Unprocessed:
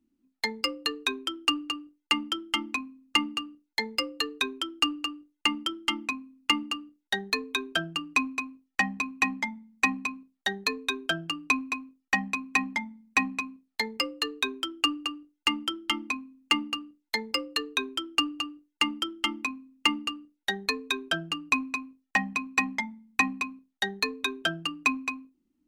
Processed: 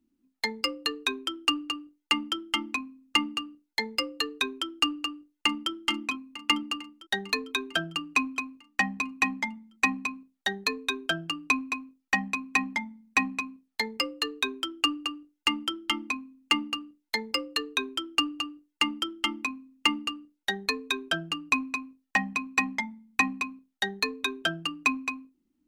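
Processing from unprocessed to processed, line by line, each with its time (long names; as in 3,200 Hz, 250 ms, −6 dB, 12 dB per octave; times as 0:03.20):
0:05.01–0:05.71: delay throw 450 ms, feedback 70%, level −14 dB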